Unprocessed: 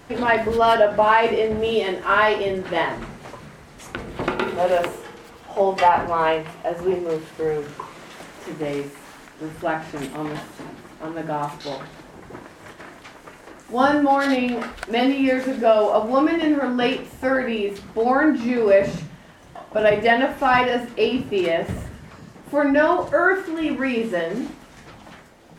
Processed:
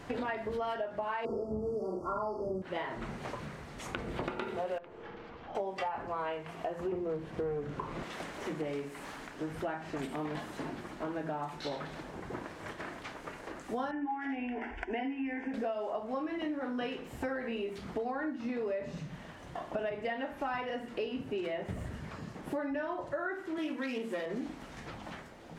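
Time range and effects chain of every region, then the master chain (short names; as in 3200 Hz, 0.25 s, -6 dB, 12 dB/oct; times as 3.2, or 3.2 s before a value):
1.25–2.62 brick-wall FIR band-stop 1400–4400 Hz + low shelf 460 Hz +7.5 dB + doubler 42 ms -3 dB
4.78–5.55 half-wave gain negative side -3 dB + compressor 2:1, threshold -41 dBFS + air absorption 220 m
6.92–8.03 tilt -2.5 dB/oct + sample leveller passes 1
13.91–15.54 LPF 3600 Hz + fixed phaser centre 820 Hz, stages 8
23.58–24.26 self-modulated delay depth 0.1 ms + HPF 180 Hz 24 dB/oct + high shelf 7600 Hz +11.5 dB
whole clip: high shelf 6900 Hz -8.5 dB; compressor 8:1, threshold -32 dBFS; gain -1.5 dB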